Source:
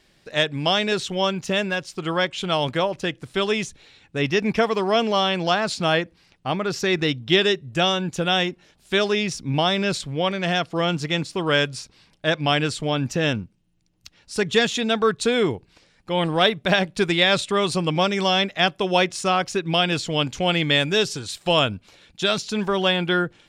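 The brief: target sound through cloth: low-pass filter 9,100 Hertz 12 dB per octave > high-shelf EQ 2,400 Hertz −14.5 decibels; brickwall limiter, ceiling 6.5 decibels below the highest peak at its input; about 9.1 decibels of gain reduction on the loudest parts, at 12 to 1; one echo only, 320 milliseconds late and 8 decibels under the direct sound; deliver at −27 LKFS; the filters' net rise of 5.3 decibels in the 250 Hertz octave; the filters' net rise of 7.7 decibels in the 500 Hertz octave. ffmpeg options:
ffmpeg -i in.wav -af "equalizer=frequency=250:width_type=o:gain=5,equalizer=frequency=500:width_type=o:gain=9,acompressor=threshold=-15dB:ratio=12,alimiter=limit=-12dB:level=0:latency=1,lowpass=9100,highshelf=frequency=2400:gain=-14.5,aecho=1:1:320:0.398,volume=-3.5dB" out.wav

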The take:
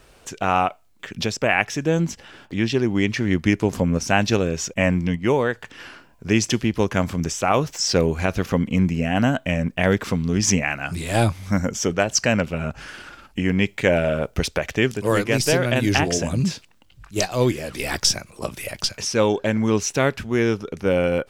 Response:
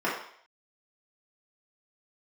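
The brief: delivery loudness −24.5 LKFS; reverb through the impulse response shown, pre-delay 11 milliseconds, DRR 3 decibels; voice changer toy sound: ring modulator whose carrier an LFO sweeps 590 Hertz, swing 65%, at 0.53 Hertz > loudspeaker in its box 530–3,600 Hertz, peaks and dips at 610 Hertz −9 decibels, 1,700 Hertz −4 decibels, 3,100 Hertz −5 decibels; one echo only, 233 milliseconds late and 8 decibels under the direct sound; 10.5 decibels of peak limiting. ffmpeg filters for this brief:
-filter_complex "[0:a]alimiter=limit=-13dB:level=0:latency=1,aecho=1:1:233:0.398,asplit=2[link_01][link_02];[1:a]atrim=start_sample=2205,adelay=11[link_03];[link_02][link_03]afir=irnorm=-1:irlink=0,volume=-15.5dB[link_04];[link_01][link_04]amix=inputs=2:normalize=0,aeval=exprs='val(0)*sin(2*PI*590*n/s+590*0.65/0.53*sin(2*PI*0.53*n/s))':channel_layout=same,highpass=530,equalizer=frequency=610:width_type=q:width=4:gain=-9,equalizer=frequency=1700:width_type=q:width=4:gain=-4,equalizer=frequency=3100:width_type=q:width=4:gain=-5,lowpass=frequency=3600:width=0.5412,lowpass=frequency=3600:width=1.3066,volume=6dB"

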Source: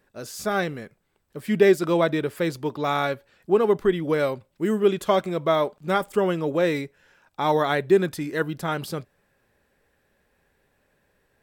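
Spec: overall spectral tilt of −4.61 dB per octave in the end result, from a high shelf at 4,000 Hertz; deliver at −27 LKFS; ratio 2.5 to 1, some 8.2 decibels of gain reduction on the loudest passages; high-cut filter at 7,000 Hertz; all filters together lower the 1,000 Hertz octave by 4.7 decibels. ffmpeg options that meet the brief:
ffmpeg -i in.wav -af "lowpass=7000,equalizer=frequency=1000:width_type=o:gain=-7,highshelf=frequency=4000:gain=6.5,acompressor=threshold=-25dB:ratio=2.5,volume=2.5dB" out.wav

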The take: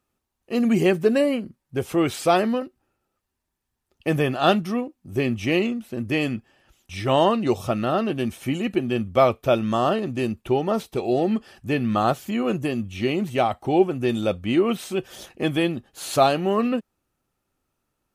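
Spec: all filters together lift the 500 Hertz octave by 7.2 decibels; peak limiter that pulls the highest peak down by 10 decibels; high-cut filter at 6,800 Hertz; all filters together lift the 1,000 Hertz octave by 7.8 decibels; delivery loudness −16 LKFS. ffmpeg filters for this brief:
ffmpeg -i in.wav -af "lowpass=6800,equalizer=frequency=500:width_type=o:gain=7,equalizer=frequency=1000:width_type=o:gain=8,volume=4dB,alimiter=limit=-3dB:level=0:latency=1" out.wav

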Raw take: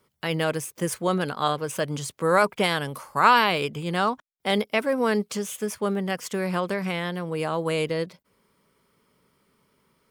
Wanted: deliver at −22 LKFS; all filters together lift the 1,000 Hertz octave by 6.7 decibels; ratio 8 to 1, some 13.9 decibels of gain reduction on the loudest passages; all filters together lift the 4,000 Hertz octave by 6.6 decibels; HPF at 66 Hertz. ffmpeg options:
ffmpeg -i in.wav -af "highpass=66,equalizer=frequency=1000:width_type=o:gain=7.5,equalizer=frequency=4000:width_type=o:gain=8.5,acompressor=threshold=-20dB:ratio=8,volume=5dB" out.wav

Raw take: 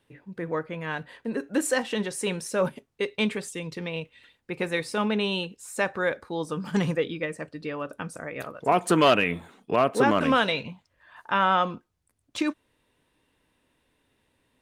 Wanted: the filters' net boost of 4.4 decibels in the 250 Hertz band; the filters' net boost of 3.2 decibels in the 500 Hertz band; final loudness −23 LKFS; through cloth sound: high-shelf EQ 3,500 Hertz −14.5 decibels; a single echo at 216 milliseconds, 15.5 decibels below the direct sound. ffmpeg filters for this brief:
ffmpeg -i in.wav -af "equalizer=frequency=250:width_type=o:gain=5,equalizer=frequency=500:width_type=o:gain=3,highshelf=frequency=3500:gain=-14.5,aecho=1:1:216:0.168,volume=2dB" out.wav

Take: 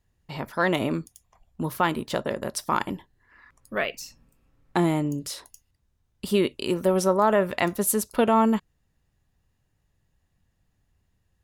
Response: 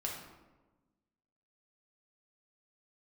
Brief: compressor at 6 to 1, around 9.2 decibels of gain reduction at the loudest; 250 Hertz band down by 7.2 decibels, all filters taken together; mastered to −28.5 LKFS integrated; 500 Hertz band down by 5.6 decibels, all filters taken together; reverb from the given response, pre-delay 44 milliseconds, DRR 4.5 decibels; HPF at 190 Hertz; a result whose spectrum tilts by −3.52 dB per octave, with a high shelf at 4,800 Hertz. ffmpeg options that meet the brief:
-filter_complex "[0:a]highpass=190,equalizer=frequency=250:width_type=o:gain=-6,equalizer=frequency=500:width_type=o:gain=-5.5,highshelf=frequency=4800:gain=4.5,acompressor=threshold=-26dB:ratio=6,asplit=2[link_01][link_02];[1:a]atrim=start_sample=2205,adelay=44[link_03];[link_02][link_03]afir=irnorm=-1:irlink=0,volume=-6dB[link_04];[link_01][link_04]amix=inputs=2:normalize=0,volume=3dB"

